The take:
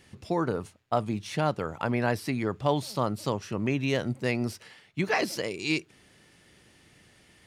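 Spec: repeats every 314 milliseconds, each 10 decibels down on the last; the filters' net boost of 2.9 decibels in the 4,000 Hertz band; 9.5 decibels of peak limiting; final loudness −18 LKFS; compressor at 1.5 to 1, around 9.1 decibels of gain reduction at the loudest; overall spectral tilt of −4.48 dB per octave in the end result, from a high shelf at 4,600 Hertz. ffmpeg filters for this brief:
ffmpeg -i in.wav -af "equalizer=frequency=4000:width_type=o:gain=6.5,highshelf=frequency=4600:gain=-5.5,acompressor=threshold=-47dB:ratio=1.5,alimiter=level_in=5dB:limit=-24dB:level=0:latency=1,volume=-5dB,aecho=1:1:314|628|942|1256:0.316|0.101|0.0324|0.0104,volume=22.5dB" out.wav

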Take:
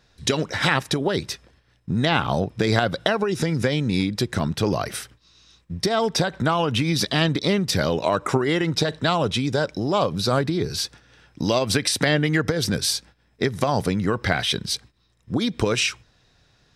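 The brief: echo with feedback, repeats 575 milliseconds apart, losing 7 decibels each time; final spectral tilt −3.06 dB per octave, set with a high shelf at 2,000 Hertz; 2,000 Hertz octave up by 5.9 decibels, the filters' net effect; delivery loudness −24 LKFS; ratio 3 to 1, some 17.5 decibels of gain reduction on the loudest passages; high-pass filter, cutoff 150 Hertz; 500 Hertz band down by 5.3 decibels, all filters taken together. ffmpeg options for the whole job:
ffmpeg -i in.wav -af "highpass=150,equalizer=frequency=500:width_type=o:gain=-7.5,highshelf=frequency=2000:gain=4,equalizer=frequency=2000:width_type=o:gain=5.5,acompressor=threshold=-38dB:ratio=3,aecho=1:1:575|1150|1725|2300|2875:0.447|0.201|0.0905|0.0407|0.0183,volume=11.5dB" out.wav

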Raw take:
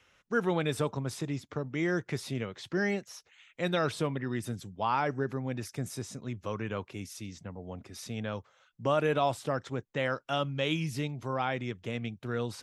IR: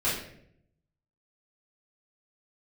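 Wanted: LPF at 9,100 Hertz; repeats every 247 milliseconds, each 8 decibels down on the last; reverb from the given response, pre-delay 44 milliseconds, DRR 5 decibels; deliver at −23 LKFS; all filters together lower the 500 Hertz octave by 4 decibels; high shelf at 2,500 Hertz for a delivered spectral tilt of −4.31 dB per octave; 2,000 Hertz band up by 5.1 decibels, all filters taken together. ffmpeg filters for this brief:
-filter_complex "[0:a]lowpass=9100,equalizer=frequency=500:width_type=o:gain=-5.5,equalizer=frequency=2000:width_type=o:gain=3,highshelf=frequency=2500:gain=8.5,aecho=1:1:247|494|741|988|1235:0.398|0.159|0.0637|0.0255|0.0102,asplit=2[link_01][link_02];[1:a]atrim=start_sample=2205,adelay=44[link_03];[link_02][link_03]afir=irnorm=-1:irlink=0,volume=-15.5dB[link_04];[link_01][link_04]amix=inputs=2:normalize=0,volume=7.5dB"

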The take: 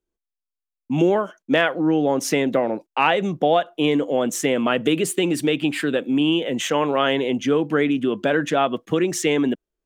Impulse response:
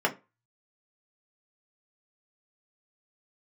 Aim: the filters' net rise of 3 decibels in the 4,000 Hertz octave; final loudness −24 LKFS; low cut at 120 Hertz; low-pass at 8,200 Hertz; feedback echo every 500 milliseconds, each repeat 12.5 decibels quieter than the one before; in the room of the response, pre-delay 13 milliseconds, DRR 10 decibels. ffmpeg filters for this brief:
-filter_complex "[0:a]highpass=120,lowpass=8200,equalizer=frequency=4000:width_type=o:gain=4.5,aecho=1:1:500|1000|1500:0.237|0.0569|0.0137,asplit=2[link_01][link_02];[1:a]atrim=start_sample=2205,adelay=13[link_03];[link_02][link_03]afir=irnorm=-1:irlink=0,volume=-22dB[link_04];[link_01][link_04]amix=inputs=2:normalize=0,volume=-4dB"

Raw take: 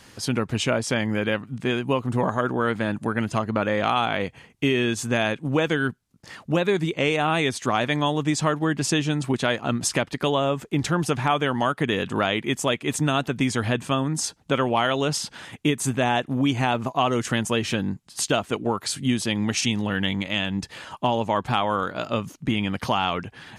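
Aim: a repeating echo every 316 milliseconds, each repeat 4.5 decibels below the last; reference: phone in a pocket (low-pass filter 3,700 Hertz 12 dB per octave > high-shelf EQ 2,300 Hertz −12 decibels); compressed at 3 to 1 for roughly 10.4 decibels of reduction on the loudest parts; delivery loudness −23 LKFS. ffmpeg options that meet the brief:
ffmpeg -i in.wav -af "acompressor=threshold=-32dB:ratio=3,lowpass=3700,highshelf=frequency=2300:gain=-12,aecho=1:1:316|632|948|1264|1580|1896|2212|2528|2844:0.596|0.357|0.214|0.129|0.0772|0.0463|0.0278|0.0167|0.01,volume=10.5dB" out.wav

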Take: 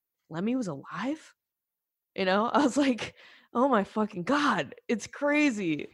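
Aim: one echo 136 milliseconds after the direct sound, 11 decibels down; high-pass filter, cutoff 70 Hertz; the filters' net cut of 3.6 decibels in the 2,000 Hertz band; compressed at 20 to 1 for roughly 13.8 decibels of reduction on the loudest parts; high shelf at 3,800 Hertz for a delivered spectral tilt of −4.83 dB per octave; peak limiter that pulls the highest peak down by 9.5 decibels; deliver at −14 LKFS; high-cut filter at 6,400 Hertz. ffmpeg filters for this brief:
ffmpeg -i in.wav -af "highpass=70,lowpass=6400,equalizer=frequency=2000:width_type=o:gain=-4,highshelf=frequency=3800:gain=-3,acompressor=threshold=-33dB:ratio=20,alimiter=level_in=8dB:limit=-24dB:level=0:latency=1,volume=-8dB,aecho=1:1:136:0.282,volume=28dB" out.wav

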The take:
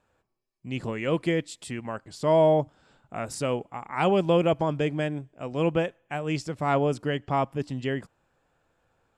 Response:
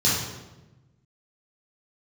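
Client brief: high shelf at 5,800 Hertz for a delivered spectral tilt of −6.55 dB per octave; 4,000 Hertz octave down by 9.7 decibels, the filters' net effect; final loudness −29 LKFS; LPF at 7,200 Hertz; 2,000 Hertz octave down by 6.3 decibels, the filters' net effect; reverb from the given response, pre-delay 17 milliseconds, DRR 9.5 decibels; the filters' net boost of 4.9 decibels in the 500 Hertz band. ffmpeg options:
-filter_complex "[0:a]lowpass=7200,equalizer=frequency=500:width_type=o:gain=6.5,equalizer=frequency=2000:width_type=o:gain=-5,equalizer=frequency=4000:width_type=o:gain=-9,highshelf=frequency=5800:gain=-8.5,asplit=2[link_01][link_02];[1:a]atrim=start_sample=2205,adelay=17[link_03];[link_02][link_03]afir=irnorm=-1:irlink=0,volume=-24.5dB[link_04];[link_01][link_04]amix=inputs=2:normalize=0,volume=-6.5dB"

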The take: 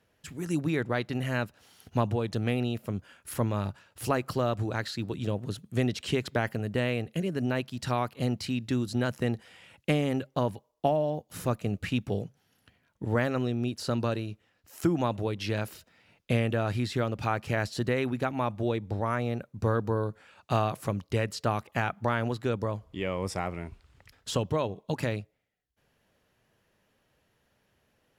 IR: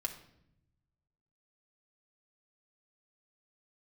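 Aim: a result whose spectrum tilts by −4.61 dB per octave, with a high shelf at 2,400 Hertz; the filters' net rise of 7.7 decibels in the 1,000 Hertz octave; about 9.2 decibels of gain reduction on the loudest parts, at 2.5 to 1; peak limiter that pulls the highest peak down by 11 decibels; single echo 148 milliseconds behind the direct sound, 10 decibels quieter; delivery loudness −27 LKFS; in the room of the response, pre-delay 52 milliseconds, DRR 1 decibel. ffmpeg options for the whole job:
-filter_complex "[0:a]equalizer=frequency=1000:width_type=o:gain=8.5,highshelf=frequency=2400:gain=8,acompressor=threshold=-31dB:ratio=2.5,alimiter=level_in=1dB:limit=-24dB:level=0:latency=1,volume=-1dB,aecho=1:1:148:0.316,asplit=2[link_01][link_02];[1:a]atrim=start_sample=2205,adelay=52[link_03];[link_02][link_03]afir=irnorm=-1:irlink=0,volume=-1.5dB[link_04];[link_01][link_04]amix=inputs=2:normalize=0,volume=7.5dB"

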